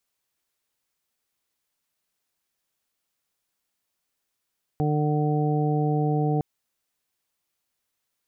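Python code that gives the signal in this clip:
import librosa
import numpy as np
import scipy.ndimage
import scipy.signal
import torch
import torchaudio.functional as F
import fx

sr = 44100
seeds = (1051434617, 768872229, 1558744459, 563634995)

y = fx.additive_steady(sr, length_s=1.61, hz=150.0, level_db=-22.5, upper_db=(-5.5, -6, -17.0, -7.0))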